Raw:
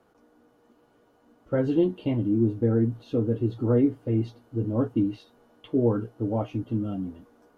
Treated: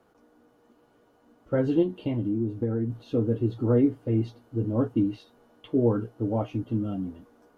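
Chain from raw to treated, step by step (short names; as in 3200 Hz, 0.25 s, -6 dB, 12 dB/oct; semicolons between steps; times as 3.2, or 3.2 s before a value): 1.82–2.9 compressor, threshold -24 dBFS, peak gain reduction 6.5 dB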